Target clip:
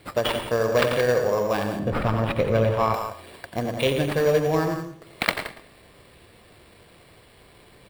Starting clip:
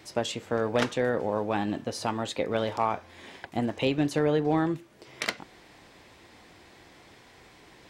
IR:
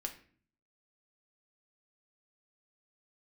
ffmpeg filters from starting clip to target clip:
-filter_complex "[0:a]highshelf=f=2.5k:g=9,aecho=1:1:1.8:0.5,aecho=1:1:89|172:0.447|0.376,acrusher=samples=7:mix=1:aa=0.000001,asplit=2[a][b];[b]adynamicsmooth=sensitivity=3.5:basefreq=580,volume=3dB[c];[a][c]amix=inputs=2:normalize=0,asettb=1/sr,asplit=3[d][e][f];[d]atrim=end=1.794[g];[e]atrim=start=1.79:end=2.94,asetpts=PTS-STARTPTS,afade=t=in:d=0.004:c=qsin,afade=t=out:st=1.146:d=0.004:c=qsin,bass=f=250:g=10,treble=f=4k:g=-11[h];[f]atrim=start=2.936[i];[g][h]acrossfade=d=0.004:c1=hsin:c2=qsin[j];[j][i]acrossfade=d=0.004:c1=qsin:c2=hsin,asplit=2[k][l];[1:a]atrim=start_sample=2205,adelay=112[m];[l][m]afir=irnorm=-1:irlink=0,volume=-12.5dB[n];[k][n]amix=inputs=2:normalize=0,volume=-5.5dB"

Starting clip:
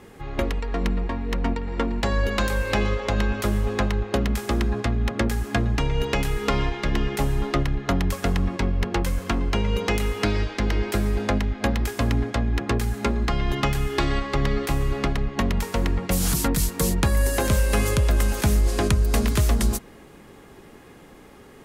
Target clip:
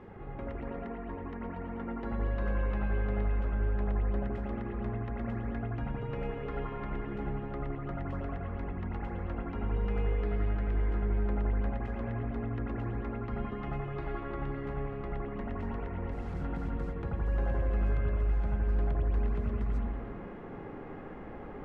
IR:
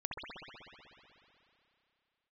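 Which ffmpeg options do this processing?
-filter_complex "[0:a]areverse,acompressor=threshold=-37dB:ratio=5,areverse,lowpass=1.6k[a];[1:a]atrim=start_sample=2205,afade=t=out:st=0.42:d=0.01,atrim=end_sample=18963,asetrate=34839,aresample=44100[b];[a][b]afir=irnorm=-1:irlink=0"

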